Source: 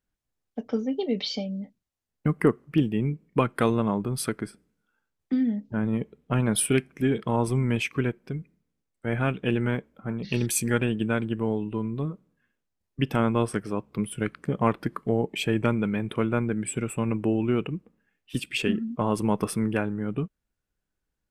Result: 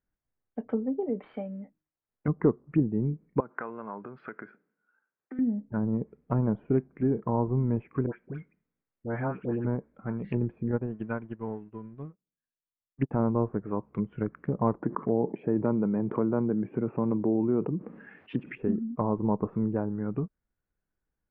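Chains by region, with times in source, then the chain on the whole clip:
1.09–2.28 switching dead time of 0.071 ms + tone controls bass -6 dB, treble -13 dB + de-hum 155.9 Hz, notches 2
3.4–5.39 compressor 8:1, threshold -30 dBFS + speaker cabinet 280–4000 Hz, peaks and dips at 310 Hz -3 dB, 1500 Hz +7 dB, 3500 Hz -7 dB
8.06–9.65 tilt +1.5 dB/oct + dispersion highs, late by 89 ms, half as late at 1300 Hz
10.71–13.11 G.711 law mismatch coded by mu + upward expander 2.5:1, over -43 dBFS
14.82–18.58 HPF 160 Hz + fast leveller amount 50%
whole clip: treble ducked by the level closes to 680 Hz, closed at -23 dBFS; LPF 2100 Hz 24 dB/oct; dynamic EQ 960 Hz, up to +6 dB, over -47 dBFS, Q 2.8; gain -2 dB

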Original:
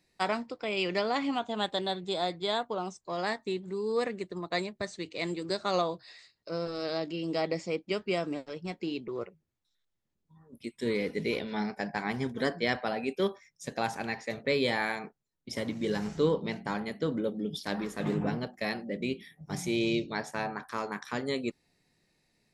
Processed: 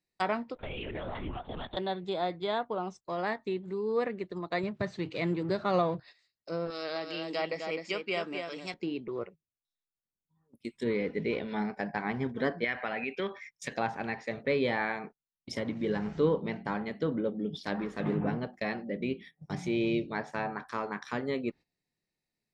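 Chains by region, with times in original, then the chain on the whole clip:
0.55–1.77 compressor, threshold -34 dBFS + LPC vocoder at 8 kHz whisper
4.63–6 G.711 law mismatch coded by mu + HPF 52 Hz + bell 130 Hz +11 dB 0.91 oct
6.7–8.74 tilt +3.5 dB/oct + echo 0.256 s -6 dB
12.64–13.76 bell 2200 Hz +14 dB 1.4 oct + compressor 2.5:1, threshold -31 dBFS
whole clip: gate -47 dBFS, range -16 dB; treble ducked by the level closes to 2500 Hz, closed at -30 dBFS

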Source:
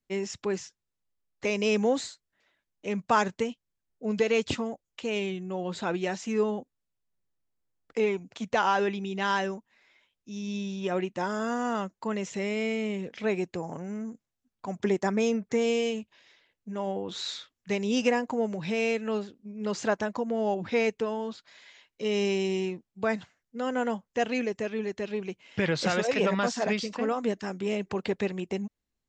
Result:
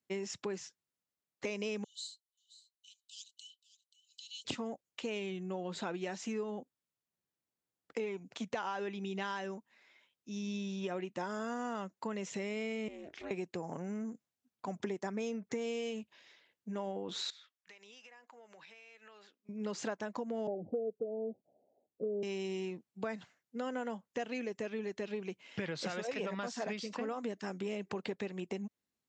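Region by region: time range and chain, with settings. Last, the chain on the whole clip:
1.84–4.45 rippled Chebyshev high-pass 2900 Hz, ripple 9 dB + echo 0.531 s -16.5 dB
12.88–13.31 compressor 3:1, threshold -39 dBFS + ring modulator 160 Hz
17.3–19.49 HPF 1500 Hz + tilt -3 dB/oct + compressor 20:1, threshold -50 dBFS
20.47–22.23 steep low-pass 770 Hz 96 dB/oct + dynamic EQ 490 Hz, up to +8 dB, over -41 dBFS, Q 2.1
whole clip: compressor, threshold -33 dBFS; HPF 130 Hz; gain -2 dB

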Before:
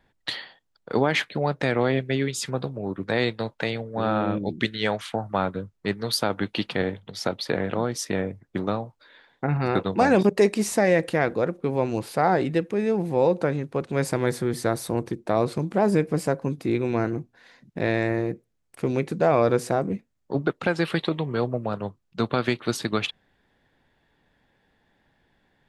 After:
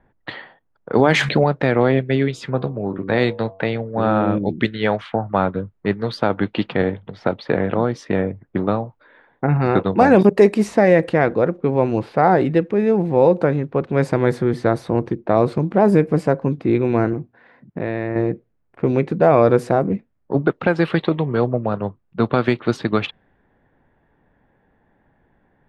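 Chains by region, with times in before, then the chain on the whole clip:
0.99–1.44 bell 7100 Hz +11.5 dB 1.3 oct + de-hum 70.11 Hz, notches 3 + fast leveller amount 70%
2.08–3.63 high shelf 6900 Hz +6 dB + de-hum 95.71 Hz, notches 12
17.13–18.16 HPF 53 Hz + compressor 2:1, threshold -29 dBFS
whole clip: bell 7100 Hz -11.5 dB 2.4 oct; low-pass opened by the level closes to 1800 Hz, open at -16.5 dBFS; gain +7 dB

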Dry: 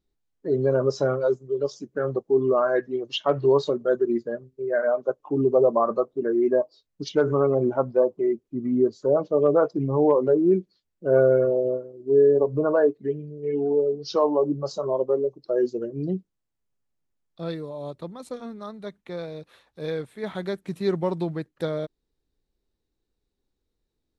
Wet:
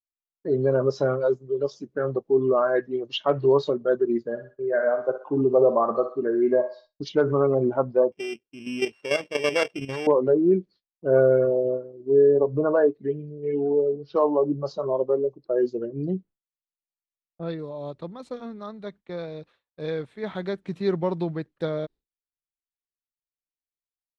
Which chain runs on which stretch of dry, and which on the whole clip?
4.29–7.05 doubler 41 ms -14 dB + thinning echo 62 ms, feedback 52%, high-pass 750 Hz, level -7 dB
8.12–10.07 sample sorter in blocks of 16 samples + low shelf 280 Hz -9 dB + level quantiser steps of 10 dB
13.96–17.59 low-pass opened by the level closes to 1100 Hz, open at -21 dBFS + mismatched tape noise reduction decoder only
whole clip: expander -42 dBFS; LPF 4800 Hz 12 dB/oct

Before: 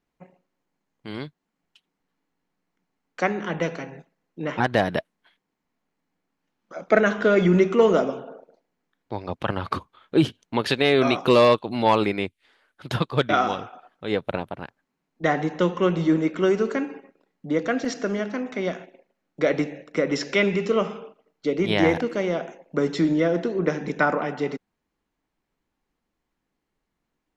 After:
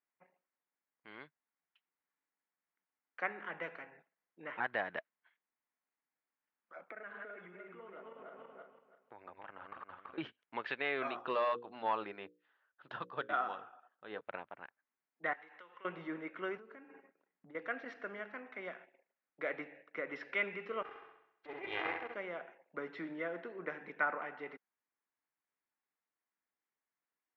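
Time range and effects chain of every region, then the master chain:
6.81–10.18 regenerating reverse delay 0.165 s, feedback 46%, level -3 dB + LPF 3400 Hz + compressor 10:1, threshold -29 dBFS
11.07–14.21 bell 2200 Hz -13 dB 0.3 oct + notches 60/120/180/240/300/360/420/480/540 Hz
15.33–15.85 HPF 1300 Hz 6 dB/oct + compressor 5:1, threshold -38 dBFS
16.57–17.55 low shelf 410 Hz +10 dB + compressor 10:1, threshold -31 dBFS
20.82–22.15 minimum comb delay 2.5 ms + flutter echo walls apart 11.3 m, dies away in 0.75 s + core saturation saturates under 500 Hz
whole clip: LPF 2000 Hz 24 dB/oct; differentiator; gain +4 dB

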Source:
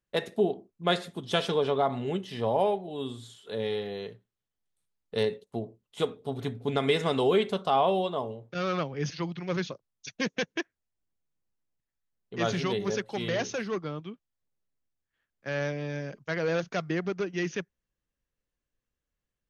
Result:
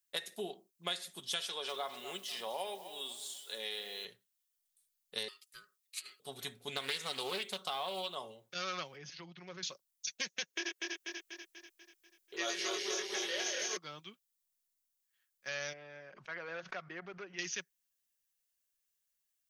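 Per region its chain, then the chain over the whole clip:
1.44–4.05 HPF 170 Hz + low shelf 220 Hz -9.5 dB + lo-fi delay 0.247 s, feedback 35%, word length 9-bit, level -14.5 dB
5.28–6.2 HPF 1300 Hz + negative-ratio compressor -43 dBFS, ratio -0.5 + ring modulator 830 Hz
6.76–8.15 short-mantissa float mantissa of 6-bit + Doppler distortion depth 0.27 ms
8.96–9.63 LPF 1100 Hz 6 dB/oct + compressor 3:1, threshold -33 dBFS
10.51–13.77 regenerating reverse delay 0.122 s, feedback 72%, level -1.5 dB + resonant low shelf 260 Hz -11 dB, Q 3 + doubler 23 ms -3 dB
15.73–17.39 LPF 1400 Hz + low shelf 370 Hz -10 dB + backwards sustainer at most 79 dB/s
whole clip: pre-emphasis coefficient 0.97; comb 5.4 ms, depth 33%; compressor 4:1, threshold -44 dBFS; gain +9 dB

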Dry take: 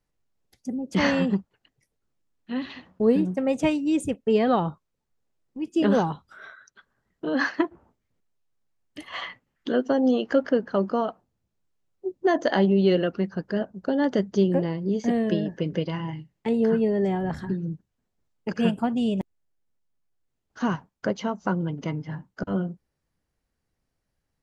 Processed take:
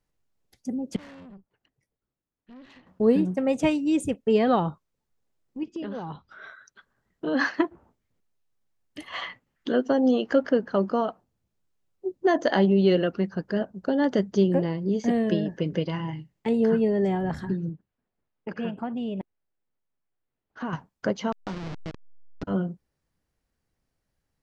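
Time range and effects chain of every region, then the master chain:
0.96–2.87 high shelf 3000 Hz -9 dB + compressor 2:1, threshold -48 dBFS + tube stage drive 43 dB, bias 0.7
5.63–6.47 LPF 5200 Hz 24 dB/oct + compressor 10:1, threshold -30 dBFS
17.69–20.73 LPF 2700 Hz + low shelf 170 Hz -7.5 dB + compressor 2:1, threshold -30 dBFS
21.32–22.43 level-crossing sampler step -23 dBFS + compressor 1.5:1, threshold -43 dBFS + LPF 5600 Hz 24 dB/oct
whole clip: dry

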